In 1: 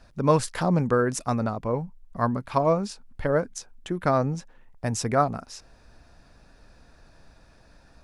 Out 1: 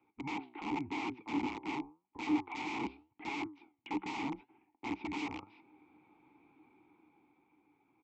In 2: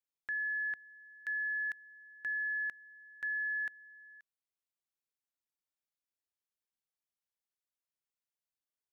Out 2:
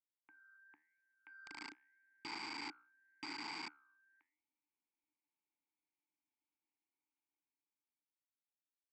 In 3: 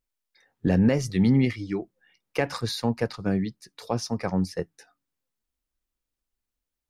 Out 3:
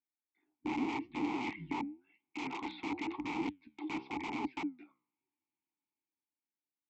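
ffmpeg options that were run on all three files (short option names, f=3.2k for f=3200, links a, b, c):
-filter_complex "[0:a]highpass=f=190:t=q:w=0.5412,highpass=f=190:t=q:w=1.307,lowpass=f=3.4k:t=q:w=0.5176,lowpass=f=3.4k:t=q:w=0.7071,lowpass=f=3.4k:t=q:w=1.932,afreqshift=-140,dynaudnorm=f=130:g=21:m=13dB,asplit=2[a][b];[b]asoftclip=type=tanh:threshold=-18dB,volume=-7dB[c];[a][c]amix=inputs=2:normalize=0,flanger=delay=7.4:depth=9.7:regen=79:speed=0.89:shape=triangular,aresample=16000,aeval=exprs='(mod(12.6*val(0)+1,2)-1)/12.6':c=same,aresample=44100,asplit=3[d][e][f];[d]bandpass=f=300:t=q:w=8,volume=0dB[g];[e]bandpass=f=870:t=q:w=8,volume=-6dB[h];[f]bandpass=f=2.24k:t=q:w=8,volume=-9dB[i];[g][h][i]amix=inputs=3:normalize=0,volume=3dB"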